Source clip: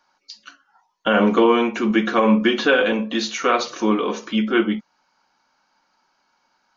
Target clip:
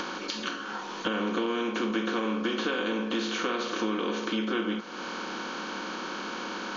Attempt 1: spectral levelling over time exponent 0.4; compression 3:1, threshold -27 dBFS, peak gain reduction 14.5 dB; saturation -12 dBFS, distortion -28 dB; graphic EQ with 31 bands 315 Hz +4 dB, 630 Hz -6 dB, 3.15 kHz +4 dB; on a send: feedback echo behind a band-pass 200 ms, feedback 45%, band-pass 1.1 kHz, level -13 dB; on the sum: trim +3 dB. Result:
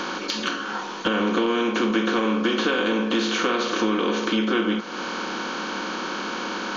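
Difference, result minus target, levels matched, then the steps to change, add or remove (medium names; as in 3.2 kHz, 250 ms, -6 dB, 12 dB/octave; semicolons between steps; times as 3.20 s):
compression: peak gain reduction -7.5 dB
change: compression 3:1, threshold -38 dBFS, peak gain reduction 22 dB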